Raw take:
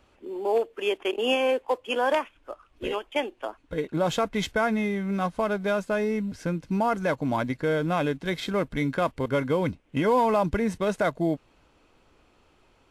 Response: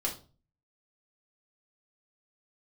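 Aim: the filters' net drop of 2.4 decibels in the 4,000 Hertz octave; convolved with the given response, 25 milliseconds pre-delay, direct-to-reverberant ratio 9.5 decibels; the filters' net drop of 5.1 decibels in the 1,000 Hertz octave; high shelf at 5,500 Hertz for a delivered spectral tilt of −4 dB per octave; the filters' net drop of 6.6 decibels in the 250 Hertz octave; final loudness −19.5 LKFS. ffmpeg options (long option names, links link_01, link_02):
-filter_complex "[0:a]equalizer=frequency=250:width_type=o:gain=-9,equalizer=frequency=1000:width_type=o:gain=-6,equalizer=frequency=4000:width_type=o:gain=-4,highshelf=frequency=5500:gain=3,asplit=2[link_01][link_02];[1:a]atrim=start_sample=2205,adelay=25[link_03];[link_02][link_03]afir=irnorm=-1:irlink=0,volume=-14dB[link_04];[link_01][link_04]amix=inputs=2:normalize=0,volume=10.5dB"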